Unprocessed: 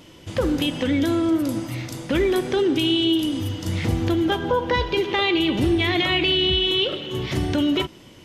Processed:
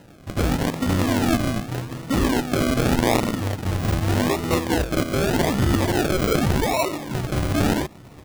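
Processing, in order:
loose part that buzzes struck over −27 dBFS, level −15 dBFS
formants moved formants −5 semitones
single-tap delay 804 ms −22.5 dB
sample-and-hold swept by an LFO 38×, swing 60% 0.84 Hz

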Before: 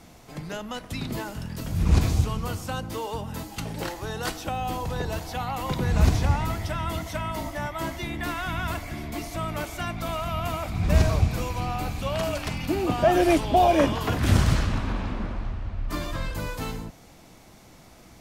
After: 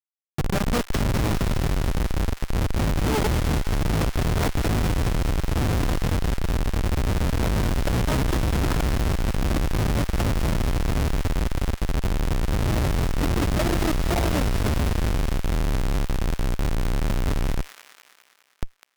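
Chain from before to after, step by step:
samples sorted by size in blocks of 8 samples
low-shelf EQ 90 Hz +11.5 dB
automatic gain control gain up to 9.5 dB
in parallel at +2 dB: brickwall limiter −9.5 dBFS, peak gain reduction 8.5 dB
on the sum: downward compressor 16 to 1, threshold −17 dBFS, peak gain reduction 17 dB
dynamic equaliser 6,400 Hz, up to +5 dB, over −47 dBFS, Q 4.7
comparator with hysteresis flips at −18 dBFS
on a send: delay with a high-pass on its return 195 ms, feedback 58%, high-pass 1,500 Hz, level −7 dB
on the sum: wrong playback speed 25 fps video run at 24 fps

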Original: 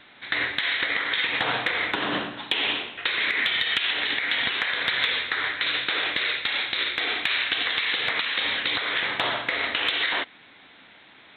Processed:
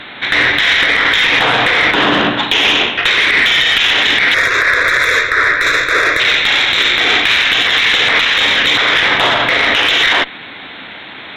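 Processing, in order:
harmonic generator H 6 −26 dB, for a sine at −10.5 dBFS
0:04.34–0:06.20: phaser with its sweep stopped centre 820 Hz, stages 6
boost into a limiter +21.5 dB
level −1 dB

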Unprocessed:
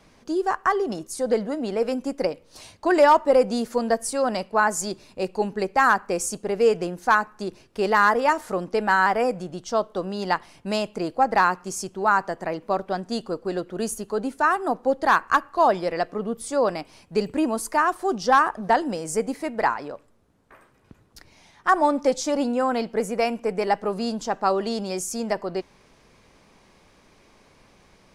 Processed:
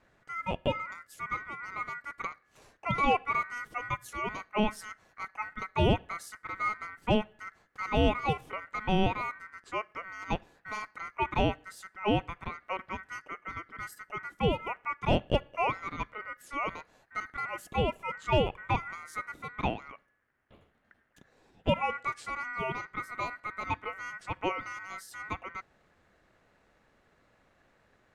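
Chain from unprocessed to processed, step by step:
ring modulation 1,700 Hz
tilt shelving filter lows +10 dB, about 940 Hz
level −6.5 dB

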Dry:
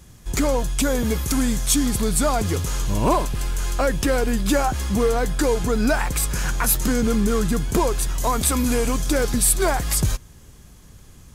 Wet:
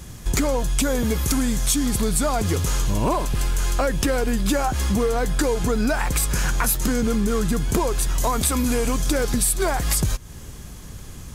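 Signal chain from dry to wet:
downward compressor 4 to 1, threshold −28 dBFS, peak gain reduction 12.5 dB
level +8.5 dB

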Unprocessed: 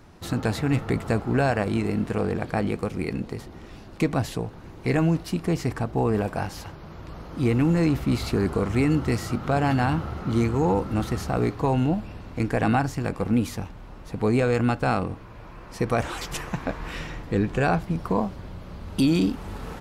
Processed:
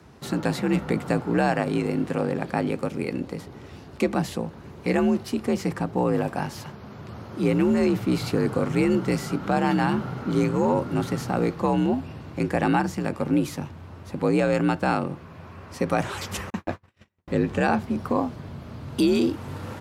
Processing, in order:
frequency shifter +52 Hz
0:16.50–0:17.28: noise gate −28 dBFS, range −48 dB

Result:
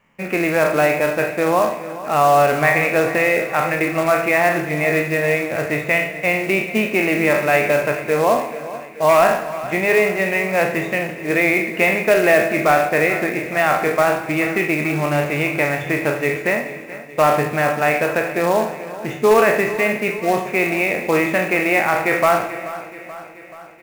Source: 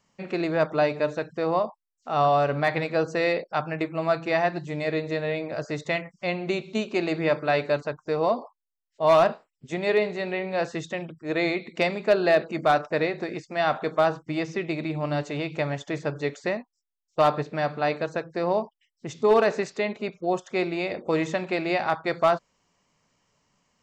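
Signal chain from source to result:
peak hold with a decay on every bin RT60 0.47 s
high shelf with overshoot 3,300 Hz −11.5 dB, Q 3
in parallel at +1.5 dB: brickwall limiter −15.5 dBFS, peak gain reduction 9.5 dB
on the sum: floating-point word with a short mantissa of 2 bits
hum removal 70.5 Hz, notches 2
on a send: repeating echo 431 ms, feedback 59%, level −15.5 dB
on the sum: reverb whose tail is shaped and stops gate 500 ms falling, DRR 11.5 dB

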